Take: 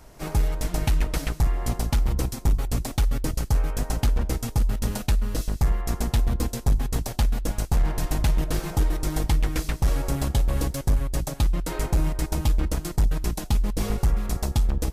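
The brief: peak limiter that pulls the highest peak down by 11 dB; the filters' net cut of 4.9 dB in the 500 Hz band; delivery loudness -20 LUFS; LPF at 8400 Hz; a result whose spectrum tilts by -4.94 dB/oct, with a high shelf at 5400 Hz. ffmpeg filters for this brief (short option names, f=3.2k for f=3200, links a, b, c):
-af "lowpass=8.4k,equalizer=f=500:t=o:g=-6.5,highshelf=f=5.4k:g=5,volume=13.5dB,alimiter=limit=-10dB:level=0:latency=1"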